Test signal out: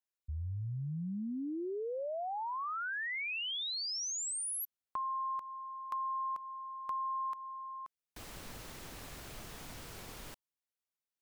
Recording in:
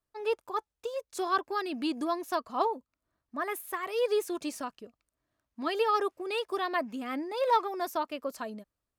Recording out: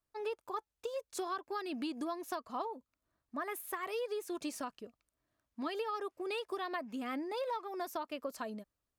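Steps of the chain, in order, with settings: compressor 12:1, threshold -33 dBFS; gain -1.5 dB

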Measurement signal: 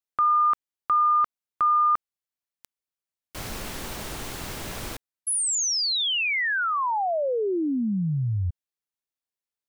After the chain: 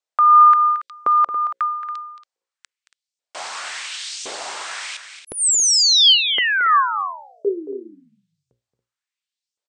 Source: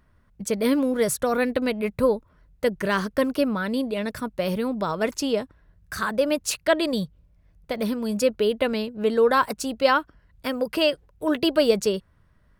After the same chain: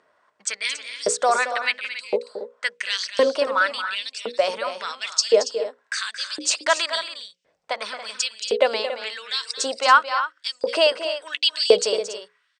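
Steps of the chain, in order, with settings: notches 60/120/180/240/300/360/420/480/540 Hz; dynamic EQ 6200 Hz, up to +5 dB, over -41 dBFS, Q 0.76; in parallel at +1 dB: limiter -18 dBFS; on the sum: LFO high-pass saw up 0.94 Hz 440–6100 Hz; elliptic low-pass 8500 Hz, stop band 40 dB; on a send: loudspeakers at several distances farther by 77 m -11 dB, 96 m -12 dB; on the sum: gain -1.5 dB

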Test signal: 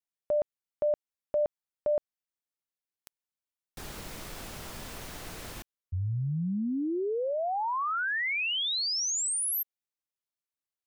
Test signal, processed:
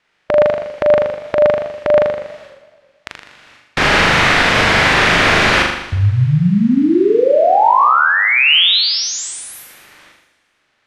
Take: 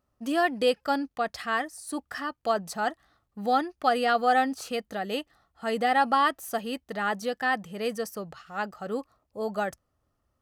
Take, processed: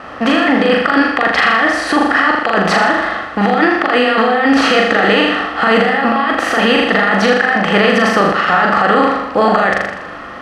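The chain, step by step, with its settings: per-bin compression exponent 0.6; gate with hold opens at -48 dBFS, hold 0.418 s, range -19 dB; LPF 3800 Hz 12 dB/oct; bell 1900 Hz +8 dB 1.4 oct; negative-ratio compressor -26 dBFS, ratio -1; flutter echo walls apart 6.9 m, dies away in 0.77 s; maximiser +14 dB; warbling echo 0.109 s, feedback 66%, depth 166 cents, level -20 dB; gain -1 dB

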